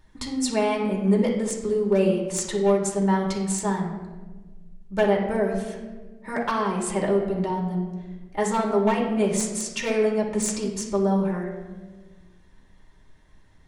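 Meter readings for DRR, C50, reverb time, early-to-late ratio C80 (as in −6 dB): −2.5 dB, 4.5 dB, 1.4 s, 7.5 dB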